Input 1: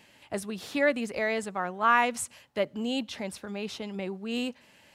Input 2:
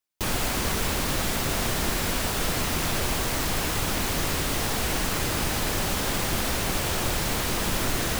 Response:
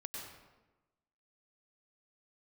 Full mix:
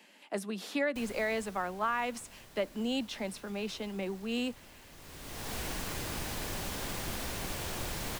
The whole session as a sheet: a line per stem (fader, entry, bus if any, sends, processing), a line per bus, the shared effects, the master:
−1.5 dB, 0.00 s, no send, de-essing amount 75%; Butterworth high-pass 180 Hz 72 dB per octave; downward compressor, threshold −26 dBFS, peak gain reduction 9 dB
−11.0 dB, 0.75 s, no send, notch filter 1,300 Hz, Q 21; automatic ducking −18 dB, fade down 1.75 s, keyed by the first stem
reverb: not used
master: no processing

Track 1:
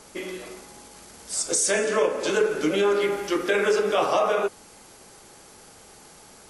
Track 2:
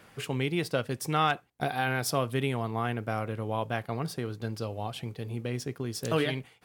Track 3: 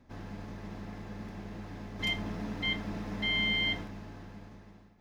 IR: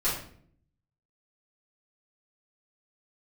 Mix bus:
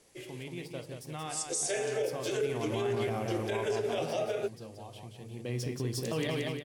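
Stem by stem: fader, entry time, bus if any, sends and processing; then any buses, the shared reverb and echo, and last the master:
−3.5 dB, 0.00 s, no send, no echo send, phaser with its sweep stopped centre 440 Hz, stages 4; expander for the loud parts 1.5 to 1, over −40 dBFS
0:02.19 −14 dB → 0:02.73 −2.5 dB → 0:03.58 −2.5 dB → 0:04.13 −13 dB → 0:05.15 −13 dB → 0:05.58 −2 dB, 0.00 s, send −17.5 dB, echo send −4 dB, parametric band 1,400 Hz −10.5 dB 0.34 octaves
muted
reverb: on, RT60 0.60 s, pre-delay 3 ms
echo: repeating echo 178 ms, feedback 45%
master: brickwall limiter −23 dBFS, peak gain reduction 9 dB

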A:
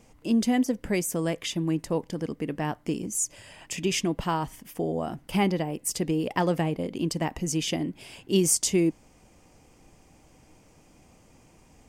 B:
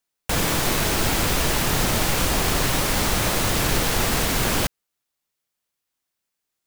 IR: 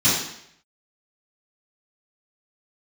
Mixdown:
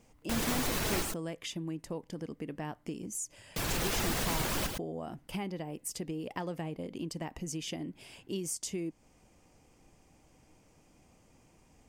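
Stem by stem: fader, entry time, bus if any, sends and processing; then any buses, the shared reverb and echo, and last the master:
−6.5 dB, 0.00 s, no send, no echo send, downward compressor 3 to 1, threshold −29 dBFS, peak gain reduction 9 dB
−0.5 dB, 0.00 s, muted 0:01.03–0:03.56, no send, echo send −13 dB, reverb reduction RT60 0.81 s; brickwall limiter −14.5 dBFS, peak gain reduction 5 dB; automatic ducking −8 dB, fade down 0.30 s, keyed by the first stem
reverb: not used
echo: single-tap delay 110 ms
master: no processing

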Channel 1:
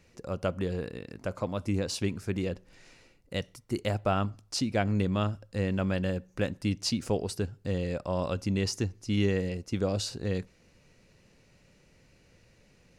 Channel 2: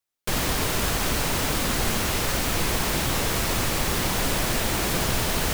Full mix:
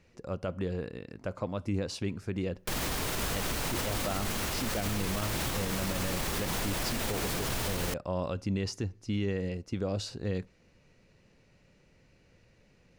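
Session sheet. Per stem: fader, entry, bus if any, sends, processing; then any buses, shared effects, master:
−1.5 dB, 0.00 s, no send, high-shelf EQ 6,500 Hz −10 dB
−5.0 dB, 2.40 s, no send, no processing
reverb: not used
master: brickwall limiter −22.5 dBFS, peak gain reduction 10 dB

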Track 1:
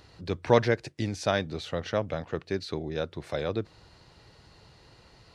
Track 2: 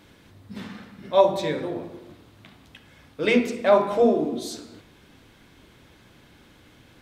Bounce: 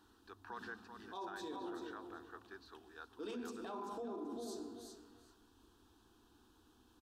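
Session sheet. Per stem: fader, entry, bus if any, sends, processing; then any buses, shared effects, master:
−4.0 dB, 0.00 s, no send, echo send −14.5 dB, resonant band-pass 1,600 Hz, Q 2.6
−12.0 dB, 0.00 s, no send, echo send −8 dB, no processing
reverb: not used
echo: repeating echo 385 ms, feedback 18%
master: phaser with its sweep stopped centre 570 Hz, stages 6; brickwall limiter −37 dBFS, peak gain reduction 15 dB

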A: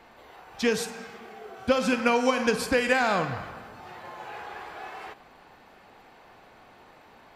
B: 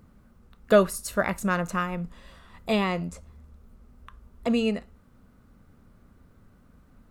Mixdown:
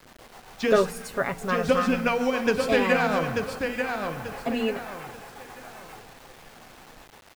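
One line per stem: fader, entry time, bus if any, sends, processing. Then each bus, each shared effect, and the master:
+2.5 dB, 0.00 s, no send, echo send −5 dB, mains-hum notches 60/120/180/240/300/360/420/480 Hz; rotating-speaker cabinet horn 7.5 Hz
−2.0 dB, 0.00 s, no send, no echo send, comb filter 7.3 ms, depth 81%; hum removal 58.3 Hz, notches 5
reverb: not used
echo: repeating echo 888 ms, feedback 32%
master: high-shelf EQ 4,700 Hz −9 dB; bit-depth reduction 8 bits, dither none

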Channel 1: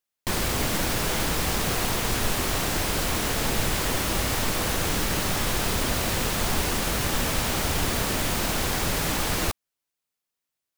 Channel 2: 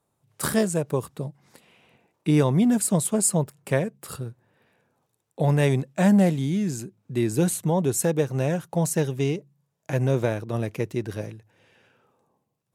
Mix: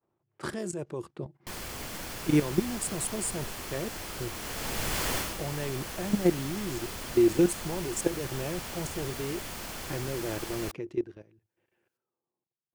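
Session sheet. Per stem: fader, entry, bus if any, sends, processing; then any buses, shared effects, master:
−3.0 dB, 1.20 s, no send, automatic ducking −9 dB, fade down 0.20 s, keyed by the second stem
0:10.80 −1.5 dB → 0:11.20 −14 dB, 0.00 s, no send, low-pass that shuts in the quiet parts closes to 2,200 Hz, open at −16 dBFS; parametric band 350 Hz +15 dB 0.22 octaves; output level in coarse steps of 15 dB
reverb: not used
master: low-shelf EQ 490 Hz −3.5 dB; notch filter 3,800 Hz, Q 19

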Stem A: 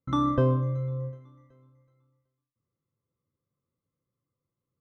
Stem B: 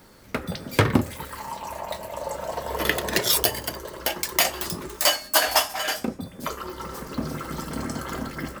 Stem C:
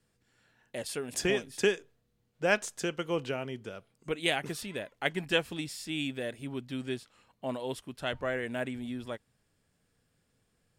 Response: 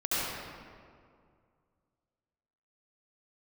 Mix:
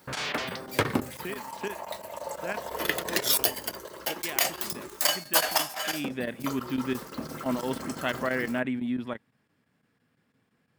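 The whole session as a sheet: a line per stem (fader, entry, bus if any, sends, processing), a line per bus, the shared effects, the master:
−15.5 dB, 0.00 s, no send, sine wavefolder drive 19 dB, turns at −13 dBFS; automatic ducking −13 dB, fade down 0.35 s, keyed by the third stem
−4.5 dB, 0.00 s, no send, high-shelf EQ 11,000 Hz +4 dB
0:05.78 −12.5 dB → 0:06.21 −0.5 dB, 0.00 s, no send, graphic EQ with 10 bands 125 Hz +7 dB, 250 Hz +10 dB, 1,000 Hz +6 dB, 2,000 Hz +6 dB, 8,000 Hz −8 dB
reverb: not used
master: high-pass filter 220 Hz 6 dB per octave; square-wave tremolo 5.9 Hz, depth 65%, duty 90%

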